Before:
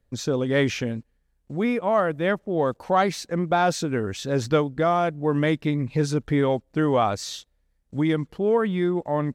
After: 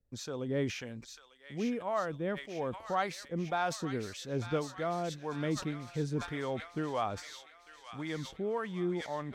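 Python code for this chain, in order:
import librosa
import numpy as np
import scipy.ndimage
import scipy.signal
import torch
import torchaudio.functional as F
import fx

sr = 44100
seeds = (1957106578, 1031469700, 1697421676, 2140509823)

p1 = fx.harmonic_tremolo(x, sr, hz=1.8, depth_pct=70, crossover_hz=620.0)
p2 = p1 + fx.echo_wet_highpass(p1, sr, ms=897, feedback_pct=60, hz=1700.0, wet_db=-5.5, dry=0)
p3 = fx.sustainer(p2, sr, db_per_s=130.0)
y = p3 * librosa.db_to_amplitude(-9.0)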